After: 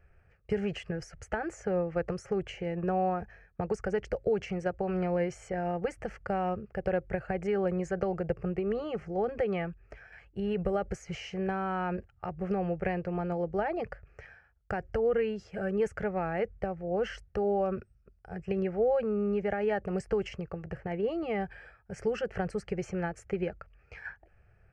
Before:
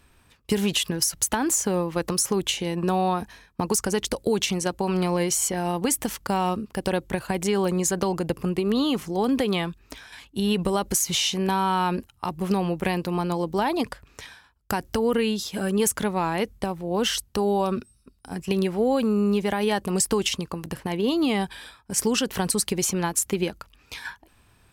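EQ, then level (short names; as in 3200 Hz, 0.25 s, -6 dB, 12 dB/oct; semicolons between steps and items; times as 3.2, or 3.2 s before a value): air absorption 70 m; tape spacing loss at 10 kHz 28 dB; fixed phaser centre 1000 Hz, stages 6; 0.0 dB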